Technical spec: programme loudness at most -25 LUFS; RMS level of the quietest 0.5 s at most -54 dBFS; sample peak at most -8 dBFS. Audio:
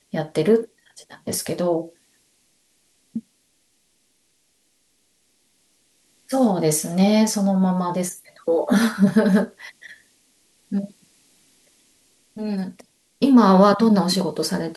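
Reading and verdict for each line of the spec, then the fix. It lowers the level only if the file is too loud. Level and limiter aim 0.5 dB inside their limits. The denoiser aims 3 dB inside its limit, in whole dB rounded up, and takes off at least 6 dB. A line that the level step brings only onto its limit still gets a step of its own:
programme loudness -20.0 LUFS: fail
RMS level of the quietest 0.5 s -65 dBFS: pass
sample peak -3.5 dBFS: fail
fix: trim -5.5 dB

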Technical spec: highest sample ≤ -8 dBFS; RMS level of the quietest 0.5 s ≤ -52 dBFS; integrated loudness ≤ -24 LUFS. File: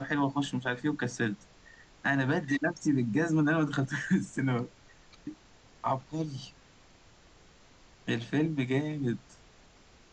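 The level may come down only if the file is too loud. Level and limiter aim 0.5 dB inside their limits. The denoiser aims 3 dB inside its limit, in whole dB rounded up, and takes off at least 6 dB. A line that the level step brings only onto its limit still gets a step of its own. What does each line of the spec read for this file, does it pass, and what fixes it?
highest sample -16.0 dBFS: pass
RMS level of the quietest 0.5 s -58 dBFS: pass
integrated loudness -31.0 LUFS: pass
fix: none needed

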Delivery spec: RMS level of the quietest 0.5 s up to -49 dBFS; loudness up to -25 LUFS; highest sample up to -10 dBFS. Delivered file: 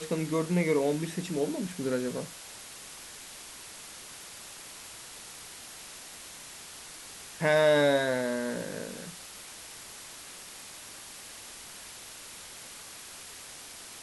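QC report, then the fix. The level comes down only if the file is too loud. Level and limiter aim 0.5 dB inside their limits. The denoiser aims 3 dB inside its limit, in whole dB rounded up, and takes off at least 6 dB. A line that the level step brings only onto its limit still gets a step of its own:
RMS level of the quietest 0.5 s -46 dBFS: fail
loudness -33.5 LUFS: pass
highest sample -11.5 dBFS: pass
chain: noise reduction 6 dB, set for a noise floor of -46 dBFS

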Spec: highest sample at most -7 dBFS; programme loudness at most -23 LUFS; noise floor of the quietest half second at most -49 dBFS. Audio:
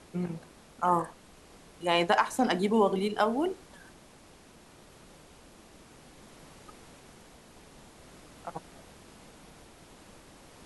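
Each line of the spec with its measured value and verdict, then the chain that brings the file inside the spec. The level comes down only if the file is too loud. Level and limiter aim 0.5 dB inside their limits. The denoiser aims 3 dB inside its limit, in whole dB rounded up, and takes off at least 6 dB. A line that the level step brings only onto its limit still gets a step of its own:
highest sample -11.0 dBFS: pass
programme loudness -28.5 LUFS: pass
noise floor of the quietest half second -55 dBFS: pass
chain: none needed

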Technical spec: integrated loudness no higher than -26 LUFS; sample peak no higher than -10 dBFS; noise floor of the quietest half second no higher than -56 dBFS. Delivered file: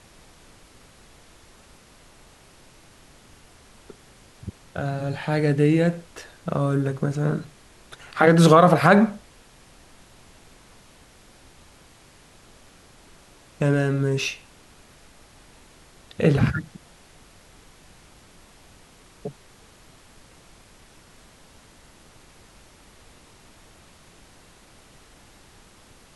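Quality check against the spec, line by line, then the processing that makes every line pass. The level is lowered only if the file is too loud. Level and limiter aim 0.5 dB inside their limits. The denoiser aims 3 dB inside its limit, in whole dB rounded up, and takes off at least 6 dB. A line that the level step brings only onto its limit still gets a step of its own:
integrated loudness -21.0 LUFS: fail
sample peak -2.5 dBFS: fail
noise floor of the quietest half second -52 dBFS: fail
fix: trim -5.5 dB; peak limiter -10.5 dBFS

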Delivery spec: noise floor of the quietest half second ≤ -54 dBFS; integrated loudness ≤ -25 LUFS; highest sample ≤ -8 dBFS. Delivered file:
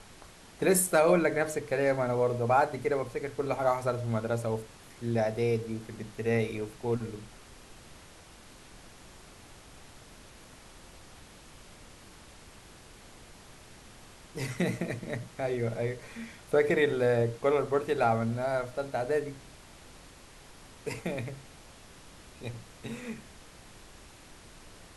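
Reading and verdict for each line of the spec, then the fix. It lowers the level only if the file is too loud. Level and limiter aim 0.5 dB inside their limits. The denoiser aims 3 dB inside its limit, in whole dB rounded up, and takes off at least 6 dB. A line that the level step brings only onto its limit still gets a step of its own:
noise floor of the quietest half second -52 dBFS: fail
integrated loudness -30.0 LUFS: pass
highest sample -11.5 dBFS: pass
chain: noise reduction 6 dB, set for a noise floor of -52 dBFS

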